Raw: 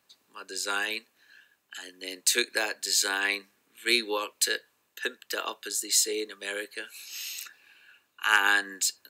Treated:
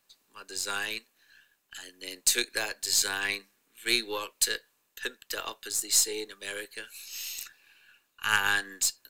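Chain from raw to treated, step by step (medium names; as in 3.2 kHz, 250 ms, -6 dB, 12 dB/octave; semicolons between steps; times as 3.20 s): partial rectifier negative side -3 dB; treble shelf 3.9 kHz +6 dB; trim -3 dB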